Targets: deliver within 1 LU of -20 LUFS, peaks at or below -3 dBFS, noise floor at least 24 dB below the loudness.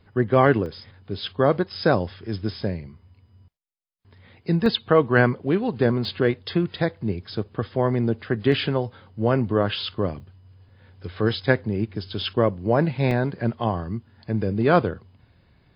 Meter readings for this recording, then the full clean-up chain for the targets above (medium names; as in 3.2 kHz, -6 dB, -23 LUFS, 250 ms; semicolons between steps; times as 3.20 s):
dropouts 6; longest dropout 1.4 ms; loudness -23.5 LUFS; peak level -2.5 dBFS; loudness target -20.0 LUFS
-> interpolate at 0.66/4.66/6.05/8.52/10.20/13.11 s, 1.4 ms; trim +3.5 dB; peak limiter -3 dBFS